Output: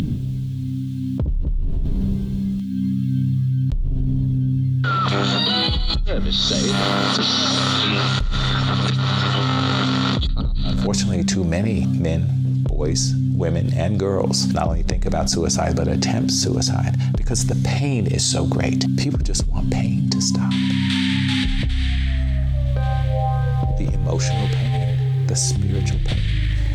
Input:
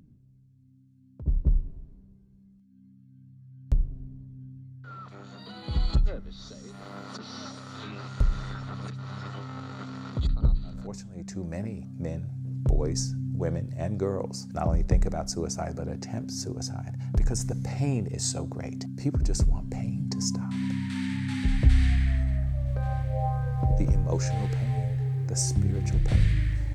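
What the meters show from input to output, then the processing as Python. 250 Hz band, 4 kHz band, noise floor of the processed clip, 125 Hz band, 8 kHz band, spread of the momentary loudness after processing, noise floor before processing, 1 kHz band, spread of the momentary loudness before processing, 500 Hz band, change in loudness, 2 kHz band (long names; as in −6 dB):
+12.0 dB, +20.0 dB, −23 dBFS, +9.0 dB, +10.5 dB, 5 LU, −57 dBFS, +13.0 dB, 15 LU, +10.5 dB, +9.0 dB, +15.0 dB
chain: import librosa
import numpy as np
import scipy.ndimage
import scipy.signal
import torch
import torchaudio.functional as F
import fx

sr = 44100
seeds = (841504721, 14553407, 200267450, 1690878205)

y = fx.peak_eq(x, sr, hz=3400.0, db=12.5, octaves=0.82)
y = fx.env_flatten(y, sr, amount_pct=100)
y = F.gain(torch.from_numpy(y), -6.0).numpy()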